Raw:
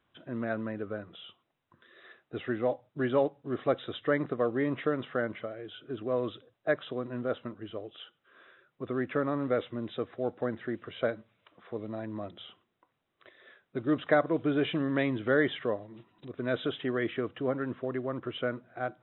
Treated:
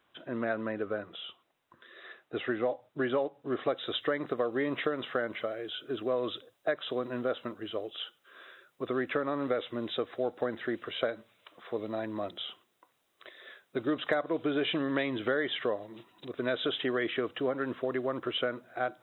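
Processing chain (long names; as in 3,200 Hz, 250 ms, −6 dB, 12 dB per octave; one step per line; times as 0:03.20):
bass and treble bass −10 dB, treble +2 dB, from 0:03.66 treble +12 dB
downward compressor 6 to 1, threshold −31 dBFS, peak gain reduction 11 dB
level +5 dB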